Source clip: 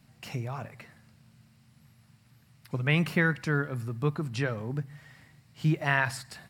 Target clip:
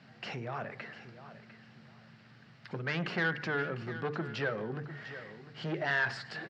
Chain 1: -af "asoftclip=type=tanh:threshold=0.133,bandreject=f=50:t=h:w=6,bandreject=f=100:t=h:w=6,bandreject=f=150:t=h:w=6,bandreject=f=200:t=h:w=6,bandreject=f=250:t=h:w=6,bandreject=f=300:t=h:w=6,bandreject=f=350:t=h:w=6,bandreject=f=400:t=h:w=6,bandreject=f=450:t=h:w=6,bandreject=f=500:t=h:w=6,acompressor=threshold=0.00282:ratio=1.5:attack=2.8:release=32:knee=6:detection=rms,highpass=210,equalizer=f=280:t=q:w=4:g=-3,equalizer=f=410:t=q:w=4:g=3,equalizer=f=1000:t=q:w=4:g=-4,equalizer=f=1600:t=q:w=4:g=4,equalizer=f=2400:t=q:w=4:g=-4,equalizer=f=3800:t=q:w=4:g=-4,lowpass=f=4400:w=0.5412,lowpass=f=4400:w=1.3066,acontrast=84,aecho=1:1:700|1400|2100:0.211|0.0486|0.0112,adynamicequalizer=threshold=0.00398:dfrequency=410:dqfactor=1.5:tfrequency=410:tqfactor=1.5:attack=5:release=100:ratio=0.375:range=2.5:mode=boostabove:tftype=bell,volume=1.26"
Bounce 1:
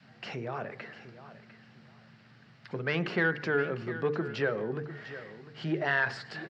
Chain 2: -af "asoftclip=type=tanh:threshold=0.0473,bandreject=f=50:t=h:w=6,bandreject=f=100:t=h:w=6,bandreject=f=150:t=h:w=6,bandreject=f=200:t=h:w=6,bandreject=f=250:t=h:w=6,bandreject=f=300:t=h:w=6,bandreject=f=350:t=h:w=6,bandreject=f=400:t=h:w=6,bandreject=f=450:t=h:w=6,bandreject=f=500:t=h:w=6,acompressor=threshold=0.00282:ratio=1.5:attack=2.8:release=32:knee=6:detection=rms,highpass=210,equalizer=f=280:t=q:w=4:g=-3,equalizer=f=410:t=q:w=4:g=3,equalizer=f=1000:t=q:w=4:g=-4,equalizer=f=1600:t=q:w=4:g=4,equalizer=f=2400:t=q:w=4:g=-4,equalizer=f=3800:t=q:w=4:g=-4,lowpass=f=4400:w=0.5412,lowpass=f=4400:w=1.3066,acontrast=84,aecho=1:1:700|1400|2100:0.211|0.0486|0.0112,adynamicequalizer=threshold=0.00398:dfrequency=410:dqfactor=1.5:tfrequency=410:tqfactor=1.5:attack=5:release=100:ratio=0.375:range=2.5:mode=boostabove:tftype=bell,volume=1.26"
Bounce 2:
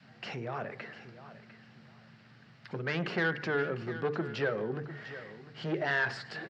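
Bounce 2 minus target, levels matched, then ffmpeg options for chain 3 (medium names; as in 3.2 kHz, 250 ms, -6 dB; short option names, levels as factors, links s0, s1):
500 Hz band +2.5 dB
-af "asoftclip=type=tanh:threshold=0.0473,bandreject=f=50:t=h:w=6,bandreject=f=100:t=h:w=6,bandreject=f=150:t=h:w=6,bandreject=f=200:t=h:w=6,bandreject=f=250:t=h:w=6,bandreject=f=300:t=h:w=6,bandreject=f=350:t=h:w=6,bandreject=f=400:t=h:w=6,bandreject=f=450:t=h:w=6,bandreject=f=500:t=h:w=6,acompressor=threshold=0.00282:ratio=1.5:attack=2.8:release=32:knee=6:detection=rms,highpass=210,equalizer=f=280:t=q:w=4:g=-3,equalizer=f=410:t=q:w=4:g=3,equalizer=f=1000:t=q:w=4:g=-4,equalizer=f=1600:t=q:w=4:g=4,equalizer=f=2400:t=q:w=4:g=-4,equalizer=f=3800:t=q:w=4:g=-4,lowpass=f=4400:w=0.5412,lowpass=f=4400:w=1.3066,acontrast=84,aecho=1:1:700|1400|2100:0.211|0.0486|0.0112,volume=1.26"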